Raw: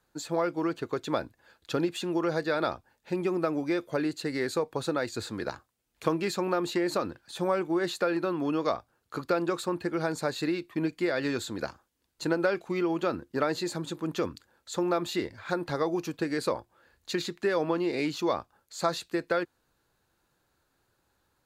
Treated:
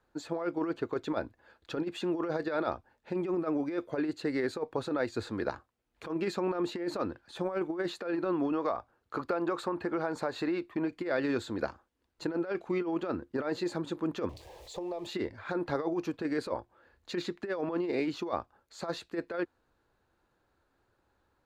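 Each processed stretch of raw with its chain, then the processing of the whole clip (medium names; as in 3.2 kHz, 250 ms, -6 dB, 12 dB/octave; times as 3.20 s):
8.52–10.91 s: dynamic bell 1 kHz, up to +6 dB, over -42 dBFS, Q 0.72 + compression 3:1, threshold -29 dBFS
14.29–15.07 s: jump at every zero crossing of -40.5 dBFS + static phaser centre 590 Hz, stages 4 + compression 10:1, threshold -34 dBFS
whole clip: low-pass 1.6 kHz 6 dB/octave; peaking EQ 150 Hz -6.5 dB 0.67 oct; compressor with a negative ratio -30 dBFS, ratio -0.5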